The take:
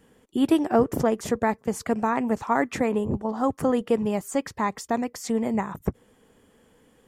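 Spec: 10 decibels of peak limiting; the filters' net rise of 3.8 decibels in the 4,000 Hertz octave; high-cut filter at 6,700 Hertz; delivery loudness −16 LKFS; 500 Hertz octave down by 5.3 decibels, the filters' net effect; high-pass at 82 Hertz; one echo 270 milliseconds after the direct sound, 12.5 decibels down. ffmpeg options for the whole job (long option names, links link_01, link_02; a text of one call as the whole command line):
ffmpeg -i in.wav -af "highpass=82,lowpass=6700,equalizer=frequency=500:width_type=o:gain=-6.5,equalizer=frequency=4000:width_type=o:gain=6,alimiter=limit=-20.5dB:level=0:latency=1,aecho=1:1:270:0.237,volume=14.5dB" out.wav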